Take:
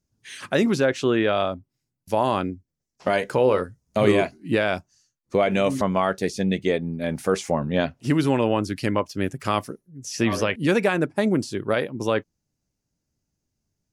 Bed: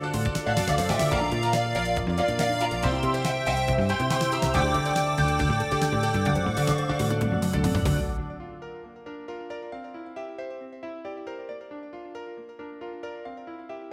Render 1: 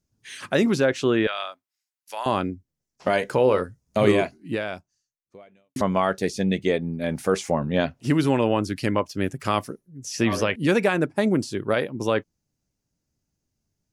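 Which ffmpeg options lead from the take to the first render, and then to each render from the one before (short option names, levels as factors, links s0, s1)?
-filter_complex "[0:a]asettb=1/sr,asplit=3[s0][s1][s2];[s0]atrim=end=1.274[s3];[s1]atrim=start=1.27:end=2.26,asetpts=PTS-STARTPTS,afade=t=in:d=0.004:c=qsin,afade=t=out:st=0.986:d=0.004:c=qsin,highpass=1300[s4];[s2]atrim=start=2.256[s5];[s3][s4]acrossfade=d=0.004:c1=hsin:c2=qsin[s6];[s6][s5]acrossfade=d=0.004:c1=qsin:c2=hsin,asplit=2[s7][s8];[s7]atrim=end=5.76,asetpts=PTS-STARTPTS,afade=t=out:st=4.09:d=1.67:c=qua[s9];[s8]atrim=start=5.76,asetpts=PTS-STARTPTS,afade=t=in:d=0.004:c=hsin[s10];[s9][s10]concat=n=2:v=0:a=1"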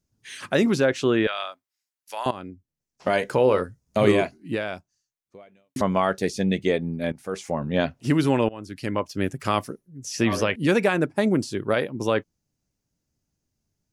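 -filter_complex "[0:a]asplit=4[s0][s1][s2][s3];[s0]atrim=end=2.31,asetpts=PTS-STARTPTS,afade=t=out:st=2.306:d=0.004:c=hsin:silence=0.158489[s4];[s1]atrim=start=2.31:end=7.12,asetpts=PTS-STARTPTS,afade=t=in:d=0.87:silence=0.158489,afade=t=out:st=4.806:d=0.004:c=hsin:silence=0.125893[s5];[s2]atrim=start=7.12:end=8.49,asetpts=PTS-STARTPTS,afade=t=in:d=0.7:silence=0.125893,afade=t=out:st=1.366:d=0.004:c=hsin:silence=0.0668344[s6];[s3]atrim=start=8.49,asetpts=PTS-STARTPTS,afade=t=in:d=0.68:silence=0.0668344[s7];[s4][s5][s6][s7]concat=n=4:v=0:a=1"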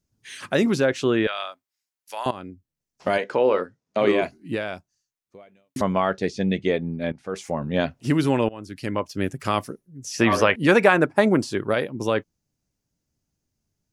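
-filter_complex "[0:a]asplit=3[s0][s1][s2];[s0]afade=t=out:st=3.17:d=0.02[s3];[s1]highpass=250,lowpass=4200,afade=t=in:st=3.17:d=0.02,afade=t=out:st=4.21:d=0.02[s4];[s2]afade=t=in:st=4.21:d=0.02[s5];[s3][s4][s5]amix=inputs=3:normalize=0,asettb=1/sr,asplit=3[s6][s7][s8];[s6]atrim=end=5.924[s9];[s7]atrim=start=5.92:end=7.36,asetpts=PTS-STARTPTS,afade=t=in:d=0.004:c=qsin,afade=t=out:st=1.436:d=0.004:c=qsin,lowpass=4800[s10];[s8]atrim=start=7.356[s11];[s9][s10]acrossfade=d=0.004:c1=hsin:c2=qsin[s12];[s12][s11]acrossfade=d=0.004:c1=qsin:c2=hsin,asettb=1/sr,asplit=3[s13][s14][s15];[s13]atrim=end=10.194[s16];[s14]atrim=start=10.19:end=11.67,asetpts=PTS-STARTPTS,afade=t=in:d=0.004:c=qsin,afade=t=out:st=1.476:d=0.004:c=qsin,equalizer=f=1100:w=0.52:g=8.5[s17];[s15]atrim=start=11.666[s18];[s16][s17]acrossfade=d=0.004:c1=hsin:c2=qsin[s19];[s19][s18]acrossfade=d=0.004:c1=qsin:c2=hsin"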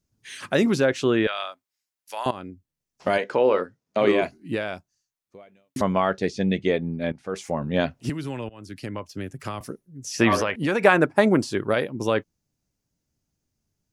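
-filter_complex "[0:a]asettb=1/sr,asplit=3[s0][s1][s2];[s0]atrim=end=8.094[s3];[s1]atrim=start=8.09:end=9.61,asetpts=PTS-STARTPTS,afade=t=in:d=0.004:c=qsin,afade=t=out:st=1.516:d=0.004:c=qsin,acrossover=split=120|1500[s4][s5][s6];[s4]acompressor=threshold=0.0126:ratio=4[s7];[s5]acompressor=threshold=0.0251:ratio=4[s8];[s6]acompressor=threshold=0.00708:ratio=4[s9];[s7][s8][s9]amix=inputs=3:normalize=0[s10];[s2]atrim=start=9.606[s11];[s3][s10]acrossfade=d=0.004:c1=hsin:c2=qsin[s12];[s12][s11]acrossfade=d=0.004:c1=qsin:c2=hsin,asettb=1/sr,asplit=3[s13][s14][s15];[s13]atrim=end=10.384[s16];[s14]atrim=start=10.38:end=10.85,asetpts=PTS-STARTPTS,afade=t=in:d=0.004:c=qsin,afade=t=out:st=0.466:d=0.004:c=qsin,acompressor=threshold=0.0891:ratio=3:attack=3.2:release=140:knee=1:detection=peak[s17];[s15]atrim=start=10.846[s18];[s16][s17]acrossfade=d=0.004:c1=hsin:c2=qsin[s19];[s19][s18]acrossfade=d=0.004:c1=qsin:c2=hsin"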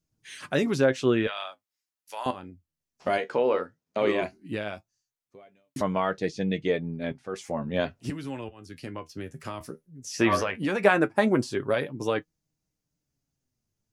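-af "flanger=delay=6.3:depth=6.5:regen=51:speed=0.16:shape=sinusoidal"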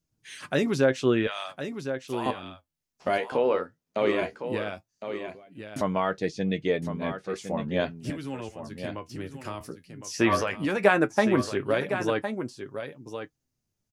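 -af "aecho=1:1:1060:0.335"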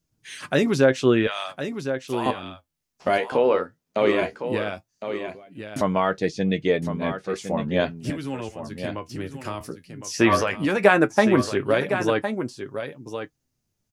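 -af "volume=1.68,alimiter=limit=0.891:level=0:latency=1"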